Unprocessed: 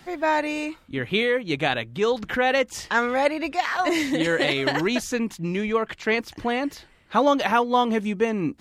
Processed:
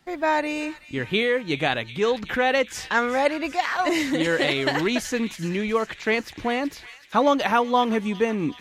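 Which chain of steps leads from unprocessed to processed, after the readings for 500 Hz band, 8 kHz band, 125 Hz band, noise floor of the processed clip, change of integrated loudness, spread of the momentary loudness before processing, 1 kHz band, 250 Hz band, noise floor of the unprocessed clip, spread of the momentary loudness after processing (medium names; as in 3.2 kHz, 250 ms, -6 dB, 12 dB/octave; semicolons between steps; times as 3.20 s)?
0.0 dB, +0.5 dB, 0.0 dB, -46 dBFS, 0.0 dB, 7 LU, 0.0 dB, 0.0 dB, -55 dBFS, 6 LU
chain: gate -45 dBFS, range -12 dB; feedback echo behind a high-pass 375 ms, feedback 68%, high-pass 2 kHz, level -13 dB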